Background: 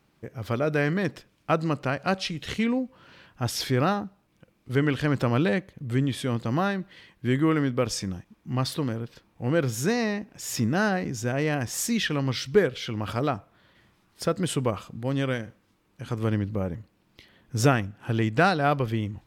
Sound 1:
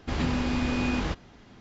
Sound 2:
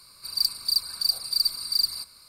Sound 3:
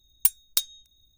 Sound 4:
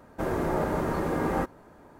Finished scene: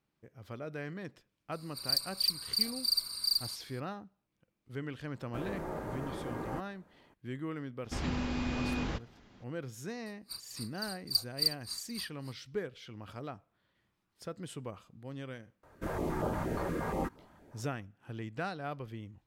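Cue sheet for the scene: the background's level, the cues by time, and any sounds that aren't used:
background -16.5 dB
1.52 s: add 2 -6.5 dB
5.15 s: add 4 -12 dB
7.84 s: add 1 -7 dB
10.06 s: add 2 -4 dB + logarithmic tremolo 3.6 Hz, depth 29 dB
15.63 s: add 4 -5 dB + step-sequenced notch 8.5 Hz 220–2100 Hz
not used: 3

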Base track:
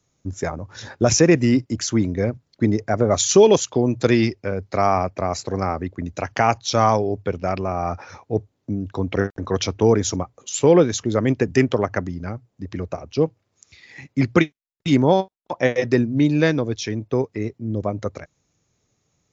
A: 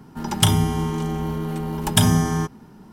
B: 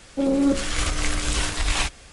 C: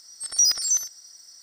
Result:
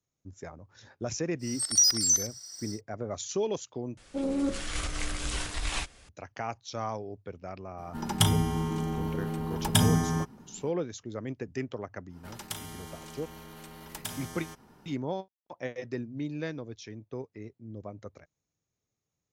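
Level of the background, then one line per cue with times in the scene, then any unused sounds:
base track -17.5 dB
1.39 s: add C -1.5 dB, fades 0.10 s + three bands compressed up and down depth 40%
3.97 s: replace with B -9 dB
7.78 s: add A -6.5 dB
12.08 s: add A -15.5 dB, fades 0.10 s + spectrum-flattening compressor 2:1

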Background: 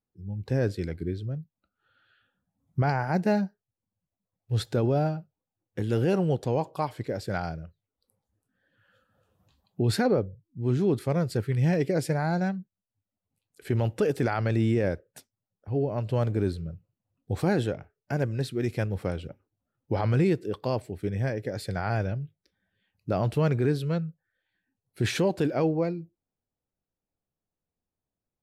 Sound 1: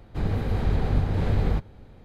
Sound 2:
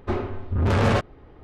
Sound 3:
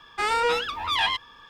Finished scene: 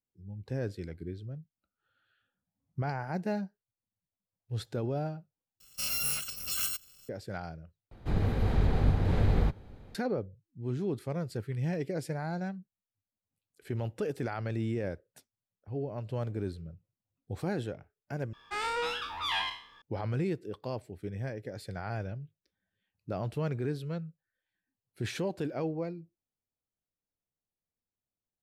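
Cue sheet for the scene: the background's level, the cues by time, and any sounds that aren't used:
background -8.5 dB
5.60 s: replace with 3 -8.5 dB + bit-reversed sample order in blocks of 128 samples
7.91 s: replace with 1 -2.5 dB
18.33 s: replace with 3 -10 dB + spectral sustain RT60 0.48 s
not used: 2

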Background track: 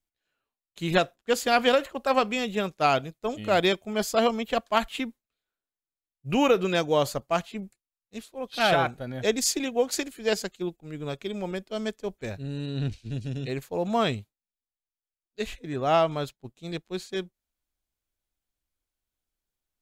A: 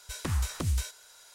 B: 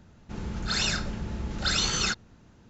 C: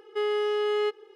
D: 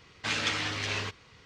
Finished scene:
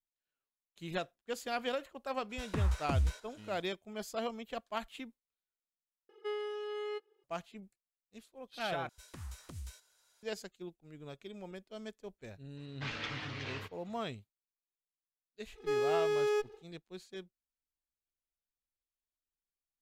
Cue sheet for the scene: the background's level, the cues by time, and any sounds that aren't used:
background track -14.5 dB
2.29 s: add A -1.5 dB, fades 0.02 s + low-pass 1.6 kHz 6 dB/octave
6.09 s: replace with C -9.5 dB + reverb removal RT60 1.1 s
8.89 s: replace with A -16.5 dB
12.57 s: add D -8.5 dB + distance through air 150 m
15.51 s: add C -4 dB, fades 0.10 s + comb filter that takes the minimum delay 2.2 ms
not used: B

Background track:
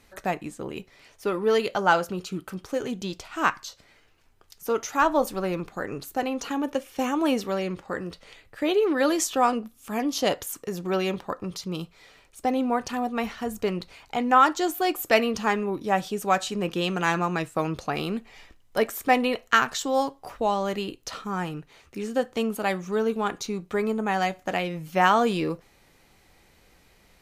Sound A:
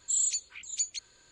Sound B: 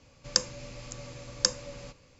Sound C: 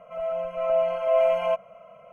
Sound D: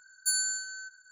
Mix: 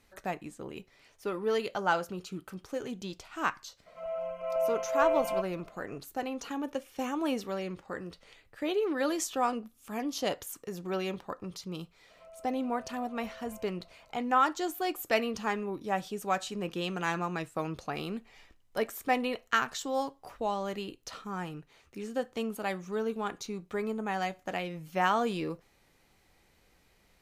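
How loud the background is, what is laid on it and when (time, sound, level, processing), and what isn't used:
background track -7.5 dB
3.86 s: add C -7 dB
12.10 s: add C -14 dB + compression 4:1, threshold -37 dBFS
not used: A, B, D

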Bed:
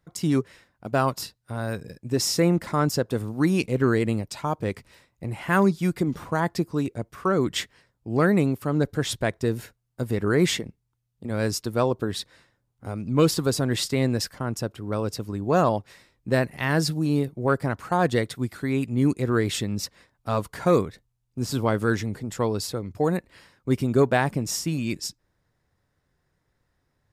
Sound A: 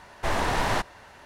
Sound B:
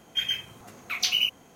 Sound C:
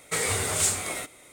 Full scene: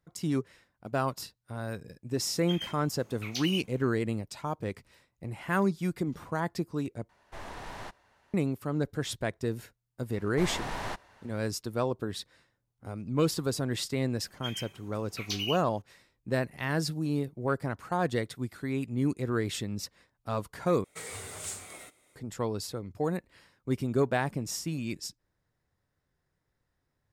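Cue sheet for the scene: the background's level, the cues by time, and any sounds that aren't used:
bed -7 dB
2.32 s: add B -11 dB
7.09 s: replace with A -17 dB
10.14 s: add A -10.5 dB
14.27 s: add B -10.5 dB + comb 5.2 ms, depth 49%
20.84 s: replace with C -14.5 dB

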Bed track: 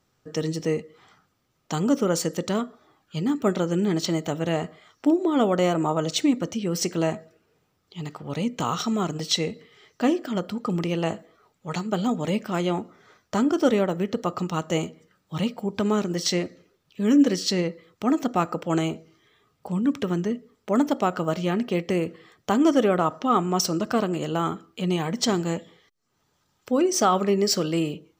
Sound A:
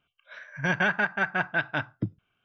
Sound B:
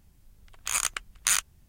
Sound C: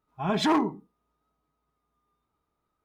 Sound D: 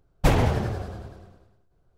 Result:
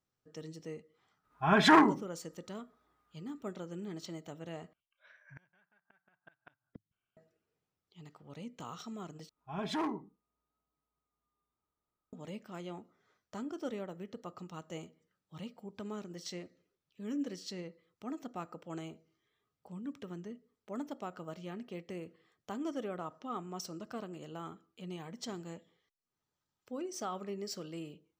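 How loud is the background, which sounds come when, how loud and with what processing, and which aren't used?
bed track -19 dB
1.23 s: add C -0.5 dB, fades 0.02 s + peaking EQ 1.6 kHz +10 dB 0.86 oct
4.73 s: replace with A -16.5 dB + inverted gate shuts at -21 dBFS, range -31 dB
9.29 s: replace with C -11.5 dB
not used: B, D

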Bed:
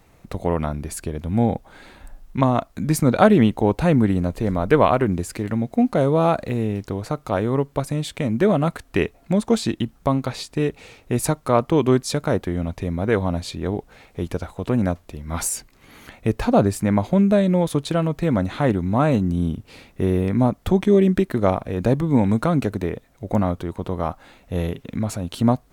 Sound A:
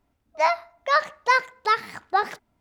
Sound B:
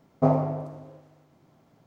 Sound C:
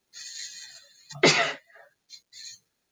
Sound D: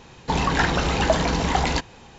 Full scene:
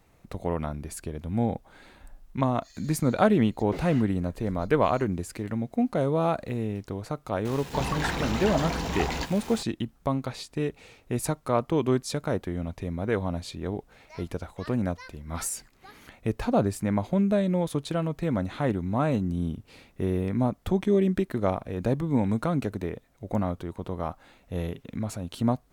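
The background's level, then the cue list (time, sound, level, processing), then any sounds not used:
bed -7 dB
2.49 s: add C -14 dB + slew-rate limiter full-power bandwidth 73 Hz
7.45 s: add D -9.5 dB + jump at every zero crossing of -28 dBFS
13.70 s: add A -17.5 dB + peaking EQ 750 Hz -13.5 dB 2.9 oct
not used: B

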